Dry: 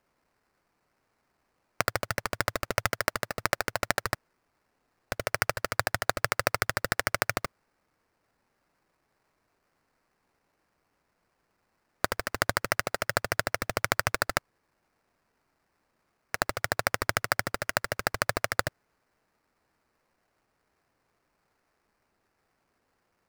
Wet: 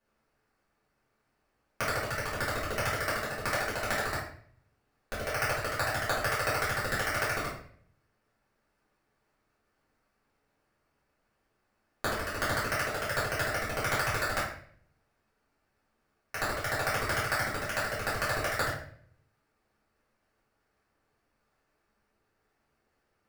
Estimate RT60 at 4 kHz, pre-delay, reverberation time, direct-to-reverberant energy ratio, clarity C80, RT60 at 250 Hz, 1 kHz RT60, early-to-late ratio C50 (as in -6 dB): 0.45 s, 3 ms, 0.55 s, -10.5 dB, 7.5 dB, 0.70 s, 0.50 s, 3.0 dB